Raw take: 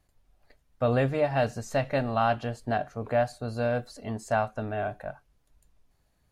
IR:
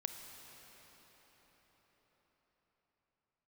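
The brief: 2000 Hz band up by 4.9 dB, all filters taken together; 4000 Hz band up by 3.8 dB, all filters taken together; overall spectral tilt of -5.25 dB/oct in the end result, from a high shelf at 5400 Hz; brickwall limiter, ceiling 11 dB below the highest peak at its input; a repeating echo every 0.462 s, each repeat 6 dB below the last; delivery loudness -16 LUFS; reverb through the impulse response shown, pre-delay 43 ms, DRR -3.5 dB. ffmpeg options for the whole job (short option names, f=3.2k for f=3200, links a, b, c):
-filter_complex "[0:a]equalizer=f=2k:t=o:g=6.5,equalizer=f=4k:t=o:g=5.5,highshelf=f=5.4k:g=-8.5,alimiter=limit=-23dB:level=0:latency=1,aecho=1:1:462|924|1386|1848|2310|2772:0.501|0.251|0.125|0.0626|0.0313|0.0157,asplit=2[a][b];[1:a]atrim=start_sample=2205,adelay=43[c];[b][c]afir=irnorm=-1:irlink=0,volume=4.5dB[d];[a][d]amix=inputs=2:normalize=0,volume=13dB"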